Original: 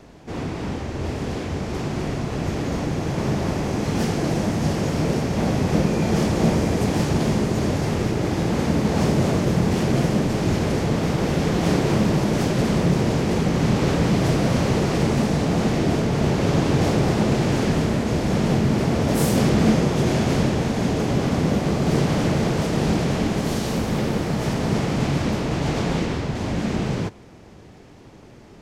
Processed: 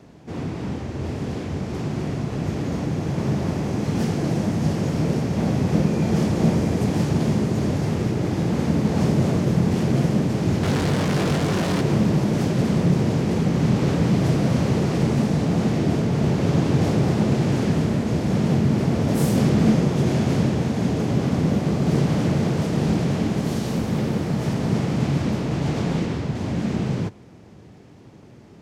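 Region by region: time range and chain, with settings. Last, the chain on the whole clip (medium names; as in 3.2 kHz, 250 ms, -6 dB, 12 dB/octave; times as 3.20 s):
10.63–11.81 s: one-bit comparator + distance through air 51 m + doubling 21 ms -5 dB
whole clip: high-pass 110 Hz 12 dB/octave; bass shelf 220 Hz +10.5 dB; trim -4.5 dB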